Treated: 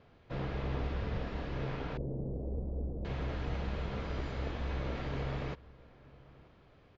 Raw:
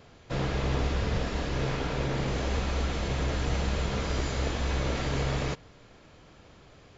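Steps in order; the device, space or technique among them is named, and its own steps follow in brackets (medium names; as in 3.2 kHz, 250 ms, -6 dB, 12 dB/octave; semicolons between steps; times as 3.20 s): shout across a valley (distance through air 230 m; echo from a far wall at 160 m, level -22 dB); 1.97–3.05 s: inverse Chebyshev low-pass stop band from 2.5 kHz, stop band 70 dB; trim -7 dB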